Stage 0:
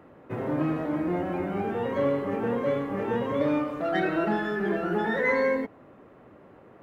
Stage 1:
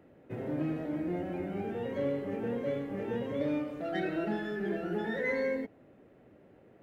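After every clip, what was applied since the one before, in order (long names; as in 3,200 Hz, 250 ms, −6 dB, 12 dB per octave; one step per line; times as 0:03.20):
parametric band 1,100 Hz −12 dB 0.75 octaves
level −5.5 dB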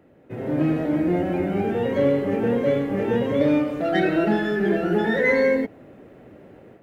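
automatic gain control gain up to 9 dB
level +3.5 dB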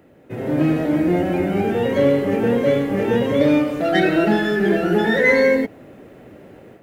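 high-shelf EQ 3,400 Hz +7.5 dB
level +3.5 dB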